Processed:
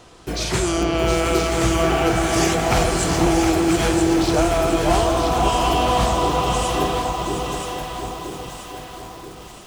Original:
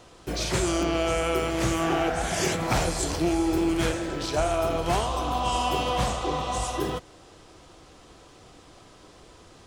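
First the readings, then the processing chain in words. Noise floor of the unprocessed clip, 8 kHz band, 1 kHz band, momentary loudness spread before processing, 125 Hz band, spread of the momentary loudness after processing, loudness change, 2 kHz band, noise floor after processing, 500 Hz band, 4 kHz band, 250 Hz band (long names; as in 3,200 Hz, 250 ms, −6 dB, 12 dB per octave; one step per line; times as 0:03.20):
−52 dBFS, +6.5 dB, +7.5 dB, 4 LU, +7.5 dB, 15 LU, +7.0 dB, +6.5 dB, −39 dBFS, +7.5 dB, +6.5 dB, +7.5 dB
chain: notch filter 550 Hz, Q 13
delay that swaps between a low-pass and a high-pass 490 ms, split 1,200 Hz, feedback 69%, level −2.5 dB
feedback echo at a low word length 716 ms, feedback 35%, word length 7 bits, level −6.5 dB
level +4.5 dB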